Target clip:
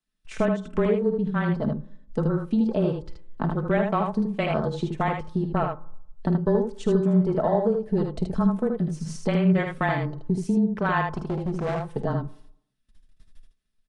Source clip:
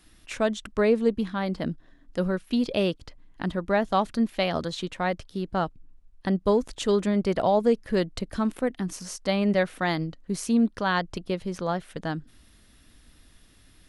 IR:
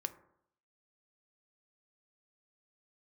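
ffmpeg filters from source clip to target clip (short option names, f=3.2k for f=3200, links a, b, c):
-filter_complex "[0:a]afwtdn=0.0224,agate=range=-22dB:threshold=-53dB:ratio=16:detection=peak,aecho=1:1:4.5:0.53,acompressor=threshold=-35dB:ratio=3,aecho=1:1:50|78:0.188|0.562,afreqshift=-21,asettb=1/sr,asplit=3[a][b][c];[a]atrim=end=11.104[d];[b]atrim=start=11.1:end=11.92,asetpts=PTS-STARTPTS,afade=t=in:d=0.004:c=qsin,afade=t=out:st=0.816:d=0.004:c=qsin,volume=33.5dB,asoftclip=hard,volume=-33.5dB[e];[c]atrim=start=11.916[f];[d][e]acrossfade=d=0.004:c1=hsin:c2=qsin[g];[g][f]acrossfade=d=0.004:c1=qsin:c2=hsin,asplit=2[h][i];[1:a]atrim=start_sample=2205[j];[i][j]afir=irnorm=-1:irlink=0,volume=-0.5dB[k];[h][k]amix=inputs=2:normalize=0,aresample=22050,aresample=44100,volume=5dB"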